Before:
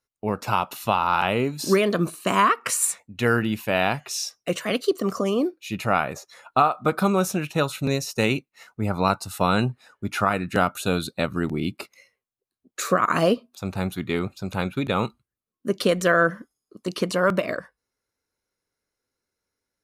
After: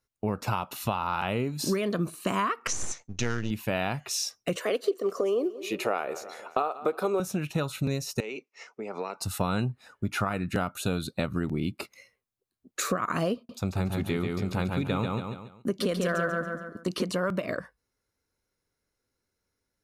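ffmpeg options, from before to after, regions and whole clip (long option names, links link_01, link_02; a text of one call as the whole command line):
ffmpeg -i in.wav -filter_complex "[0:a]asettb=1/sr,asplit=3[link_01][link_02][link_03];[link_01]atrim=end=2.674[link_04];[link_02]atrim=start=2.67:end=3.51,asetpts=PTS-STARTPTS,afade=type=in:duration=0.004:curve=qsin,afade=type=out:start_time=0.836:duration=0.004:curve=qsin,aeval=exprs='if(lt(val(0),0),0.251*val(0),val(0))':channel_layout=same,deesser=0.5,lowpass=frequency=6200:width_type=q:width=7.7[link_05];[link_03]atrim=start=3.506[link_06];[link_04][link_05]acrossfade=duration=0.004:curve1=hsin:curve2=qsin[link_07];[link_07][link_06]acrossfade=duration=0.004:curve1=qsin:curve2=hsin,asettb=1/sr,asplit=3[link_08][link_09][link_10];[link_08]atrim=end=4.564[link_11];[link_09]atrim=start=4.56:end=7.2,asetpts=PTS-STARTPTS,afade=type=in:duration=0.004:curve=qsin,afade=type=out:start_time=2.636:duration=0.004:curve=qsin,highpass=frequency=420:width_type=q:width=3,aecho=1:1:176|352|528|704:0.0841|0.0446|0.0236|0.0125,atrim=end_sample=116424[link_12];[link_10]atrim=start=7.196[link_13];[link_11][link_12]acrossfade=duration=0.004:curve1=hsin:curve2=qsin[link_14];[link_14][link_13]acrossfade=duration=0.004:curve1=qsin:curve2=hsin,asettb=1/sr,asplit=3[link_15][link_16][link_17];[link_15]atrim=end=8.204[link_18];[link_16]atrim=start=8.2:end=9.21,asetpts=PTS-STARTPTS,afade=type=in:duration=0.004:curve=qsin,afade=type=out:start_time=1.006:duration=0.004:curve=qsin,acompressor=threshold=-29dB:ratio=8:attack=3.2:release=140:knee=1:detection=peak,highpass=frequency=270:width=0.5412,highpass=frequency=270:width=1.3066,equalizer=frequency=290:width_type=q:width=4:gain=-6,equalizer=frequency=430:width_type=q:width=4:gain=8,equalizer=frequency=1500:width_type=q:width=4:gain=-4,equalizer=frequency=2300:width_type=q:width=4:gain=5,equalizer=frequency=3900:width_type=q:width=4:gain=-7,equalizer=frequency=5600:width_type=q:width=4:gain=7,lowpass=frequency=6800:width=0.5412,lowpass=frequency=6800:width=1.3066[link_19];[link_17]atrim=start=9.206[link_20];[link_18][link_19]acrossfade=duration=0.004:curve1=hsin:curve2=qsin[link_21];[link_21][link_20]acrossfade=duration=0.004:curve1=qsin:curve2=hsin,asettb=1/sr,asplit=3[link_22][link_23][link_24];[link_22]atrim=end=13.354[link_25];[link_23]atrim=start=13.35:end=17.08,asetpts=PTS-STARTPTS,afade=type=in:duration=0.004:curve=qsin,afade=type=out:start_time=3.726:duration=0.004:curve=qsin,agate=range=-13dB:threshold=-52dB:ratio=16:release=100:detection=peak,aecho=1:1:140|280|420|560:0.631|0.208|0.0687|0.0227,atrim=end_sample=164493[link_26];[link_24]atrim=start=17.076[link_27];[link_25][link_26]acrossfade=duration=0.004:curve1=hsin:curve2=qsin[link_28];[link_28][link_27]acrossfade=duration=0.004:curve1=qsin:curve2=hsin,lowshelf=frequency=200:gain=7.5,acompressor=threshold=-26dB:ratio=4" out.wav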